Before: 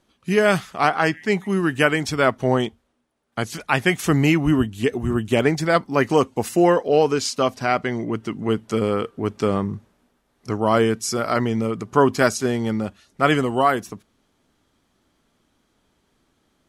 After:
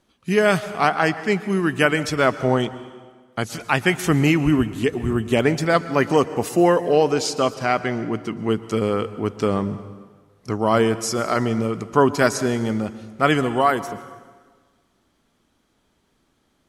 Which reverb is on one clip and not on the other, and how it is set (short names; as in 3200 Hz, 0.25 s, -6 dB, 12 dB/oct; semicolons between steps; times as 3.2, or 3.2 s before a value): plate-style reverb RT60 1.5 s, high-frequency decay 0.85×, pre-delay 0.105 s, DRR 14 dB